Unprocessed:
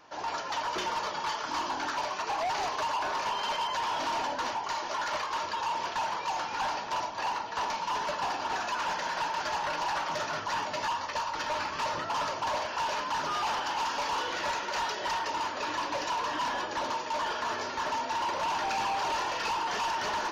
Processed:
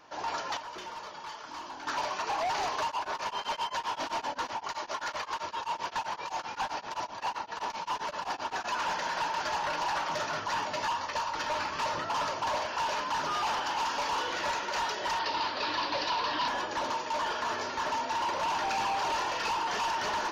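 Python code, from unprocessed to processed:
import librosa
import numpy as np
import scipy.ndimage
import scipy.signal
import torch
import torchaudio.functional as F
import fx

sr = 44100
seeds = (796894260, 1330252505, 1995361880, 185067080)

y = fx.tremolo_abs(x, sr, hz=7.7, at=(2.87, 8.64), fade=0.02)
y = fx.high_shelf_res(y, sr, hz=6200.0, db=-12.5, q=3.0, at=(15.19, 16.48))
y = fx.edit(y, sr, fx.clip_gain(start_s=0.57, length_s=1.3, db=-9.5), tone=tone)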